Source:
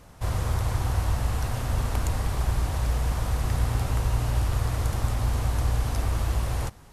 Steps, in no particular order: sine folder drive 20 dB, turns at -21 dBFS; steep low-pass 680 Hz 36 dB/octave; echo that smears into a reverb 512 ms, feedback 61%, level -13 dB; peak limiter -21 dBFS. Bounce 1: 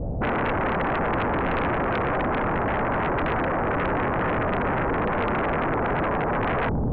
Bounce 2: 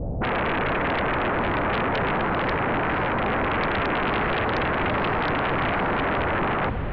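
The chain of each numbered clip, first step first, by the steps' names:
steep low-pass > peak limiter > echo that smears into a reverb > sine folder; steep low-pass > sine folder > peak limiter > echo that smears into a reverb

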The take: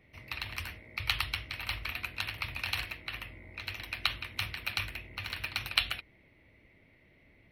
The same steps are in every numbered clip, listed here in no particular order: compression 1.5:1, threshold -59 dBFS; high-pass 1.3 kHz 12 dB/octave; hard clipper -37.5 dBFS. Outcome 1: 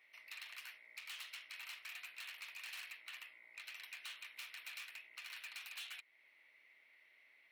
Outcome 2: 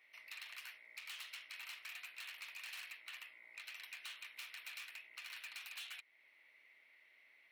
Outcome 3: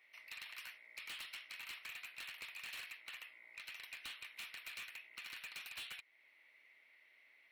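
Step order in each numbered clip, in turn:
hard clipper > compression > high-pass; hard clipper > high-pass > compression; high-pass > hard clipper > compression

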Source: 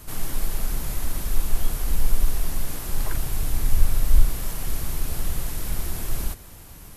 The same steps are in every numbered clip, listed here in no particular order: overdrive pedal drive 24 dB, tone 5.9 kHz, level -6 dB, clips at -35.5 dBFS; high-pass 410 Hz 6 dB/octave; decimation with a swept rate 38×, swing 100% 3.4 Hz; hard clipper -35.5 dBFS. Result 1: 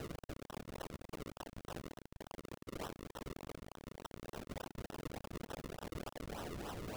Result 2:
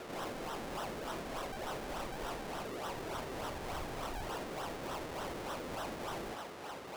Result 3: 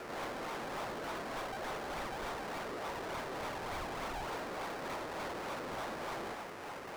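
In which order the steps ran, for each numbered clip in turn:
hard clipper > overdrive pedal > high-pass > decimation with a swept rate; decimation with a swept rate > overdrive pedal > high-pass > hard clipper; decimation with a swept rate > high-pass > hard clipper > overdrive pedal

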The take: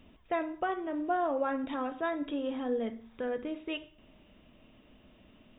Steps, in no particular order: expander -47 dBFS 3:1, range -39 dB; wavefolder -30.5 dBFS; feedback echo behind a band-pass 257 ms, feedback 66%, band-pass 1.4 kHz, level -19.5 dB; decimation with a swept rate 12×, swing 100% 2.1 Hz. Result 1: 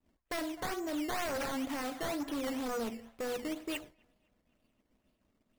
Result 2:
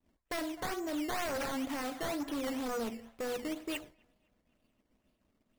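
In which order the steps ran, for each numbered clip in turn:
decimation with a swept rate > feedback echo behind a band-pass > wavefolder > expander; decimation with a swept rate > feedback echo behind a band-pass > expander > wavefolder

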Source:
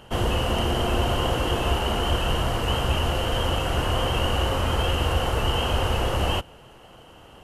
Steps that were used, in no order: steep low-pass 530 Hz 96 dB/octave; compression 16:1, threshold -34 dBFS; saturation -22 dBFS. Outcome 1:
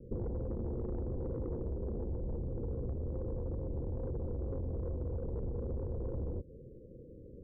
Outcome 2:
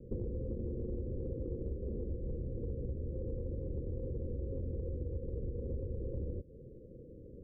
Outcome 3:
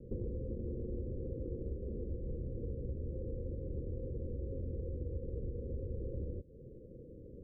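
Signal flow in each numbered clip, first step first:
steep low-pass > saturation > compression; steep low-pass > compression > saturation; compression > steep low-pass > saturation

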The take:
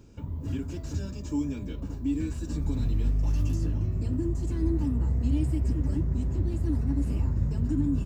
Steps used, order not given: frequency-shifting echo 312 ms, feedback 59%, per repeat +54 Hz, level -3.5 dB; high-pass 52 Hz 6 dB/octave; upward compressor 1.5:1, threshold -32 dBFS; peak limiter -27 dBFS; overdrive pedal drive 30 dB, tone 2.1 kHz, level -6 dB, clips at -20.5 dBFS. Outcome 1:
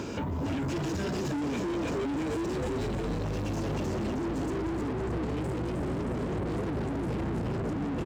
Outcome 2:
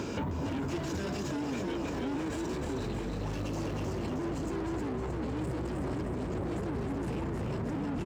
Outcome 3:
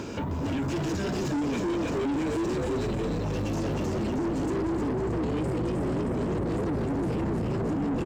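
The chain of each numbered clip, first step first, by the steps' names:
frequency-shifting echo > upward compressor > overdrive pedal > high-pass > peak limiter; upward compressor > overdrive pedal > frequency-shifting echo > peak limiter > high-pass; upward compressor > frequency-shifting echo > high-pass > peak limiter > overdrive pedal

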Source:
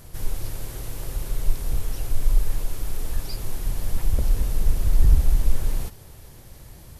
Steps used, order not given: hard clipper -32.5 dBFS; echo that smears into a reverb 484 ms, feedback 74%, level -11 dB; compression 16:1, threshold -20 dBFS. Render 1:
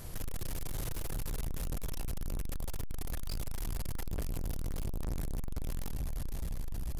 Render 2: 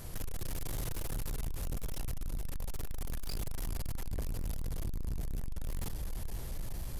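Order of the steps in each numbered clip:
echo that smears into a reverb > hard clipper > compression; compression > echo that smears into a reverb > hard clipper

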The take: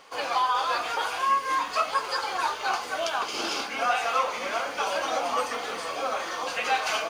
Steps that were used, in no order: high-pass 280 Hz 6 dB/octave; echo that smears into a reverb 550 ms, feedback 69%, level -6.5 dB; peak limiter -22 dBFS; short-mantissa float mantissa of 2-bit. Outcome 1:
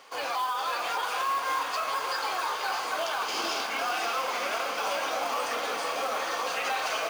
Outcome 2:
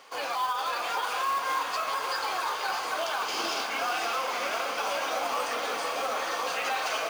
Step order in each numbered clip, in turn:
high-pass > peak limiter > short-mantissa float > echo that smears into a reverb; high-pass > short-mantissa float > peak limiter > echo that smears into a reverb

